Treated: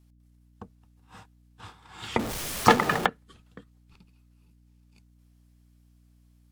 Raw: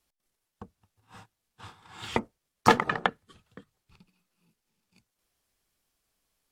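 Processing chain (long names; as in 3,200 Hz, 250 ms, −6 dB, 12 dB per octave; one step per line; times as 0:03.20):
0:02.19–0:03.06: converter with a step at zero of −28 dBFS
mains hum 60 Hz, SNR 27 dB
level +1 dB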